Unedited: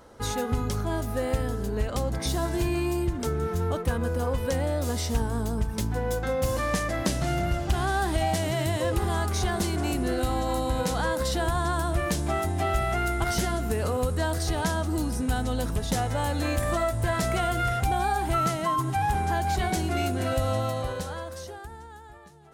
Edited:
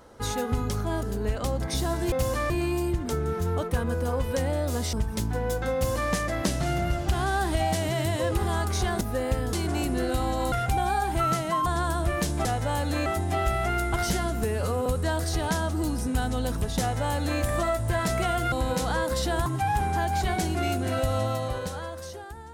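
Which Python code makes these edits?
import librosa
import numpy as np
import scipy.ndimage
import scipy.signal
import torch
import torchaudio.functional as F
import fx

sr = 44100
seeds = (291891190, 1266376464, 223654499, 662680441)

y = fx.edit(x, sr, fx.move(start_s=1.03, length_s=0.52, to_s=9.62),
    fx.cut(start_s=5.07, length_s=0.47),
    fx.duplicate(start_s=6.35, length_s=0.38, to_s=2.64),
    fx.swap(start_s=10.61, length_s=0.94, other_s=17.66, other_length_s=1.14),
    fx.stretch_span(start_s=13.72, length_s=0.28, factor=1.5),
    fx.duplicate(start_s=15.94, length_s=0.61, to_s=12.34), tone=tone)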